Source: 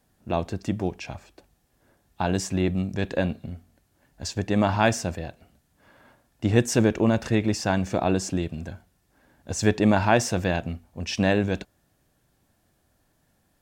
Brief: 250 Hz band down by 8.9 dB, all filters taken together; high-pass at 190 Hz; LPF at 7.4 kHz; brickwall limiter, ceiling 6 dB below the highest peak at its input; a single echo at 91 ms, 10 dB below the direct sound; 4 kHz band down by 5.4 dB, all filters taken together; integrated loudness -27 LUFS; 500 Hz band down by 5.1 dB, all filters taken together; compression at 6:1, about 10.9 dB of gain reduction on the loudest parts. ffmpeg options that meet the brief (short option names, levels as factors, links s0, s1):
-af "highpass=190,lowpass=7400,equalizer=f=250:t=o:g=-8.5,equalizer=f=500:t=o:g=-4,equalizer=f=4000:t=o:g=-7,acompressor=threshold=0.0355:ratio=6,alimiter=limit=0.0794:level=0:latency=1,aecho=1:1:91:0.316,volume=3.35"